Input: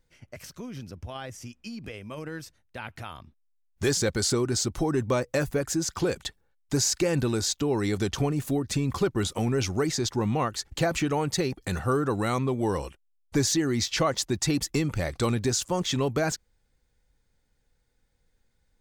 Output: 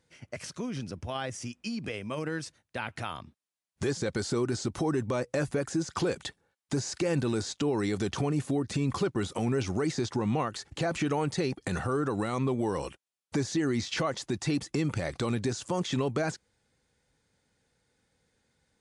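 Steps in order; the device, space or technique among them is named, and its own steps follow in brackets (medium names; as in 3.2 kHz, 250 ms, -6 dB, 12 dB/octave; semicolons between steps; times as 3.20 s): podcast mastering chain (high-pass 110 Hz 12 dB/octave; de-esser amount 85%; compression 2:1, threshold -31 dBFS, peak gain reduction 6.5 dB; peak limiter -24 dBFS, peak gain reduction 5.5 dB; trim +4.5 dB; MP3 96 kbps 24 kHz)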